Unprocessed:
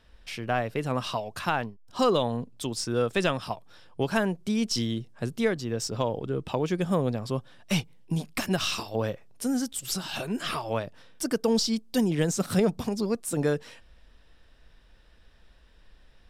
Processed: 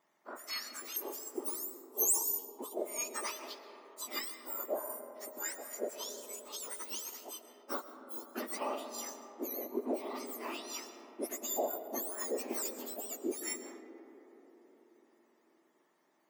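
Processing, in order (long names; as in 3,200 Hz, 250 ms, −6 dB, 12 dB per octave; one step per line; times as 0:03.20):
frequency axis turned over on the octave scale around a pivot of 1,800 Hz
0:00.96–0:02.39: drawn EQ curve 230 Hz 0 dB, 420 Hz +12 dB, 660 Hz −5 dB, 1,000 Hz −3 dB, 2,300 Hz −25 dB, 4,000 Hz −18 dB, 7,700 Hz +13 dB
convolution reverb RT60 4.1 s, pre-delay 80 ms, DRR 8.5 dB
level −8.5 dB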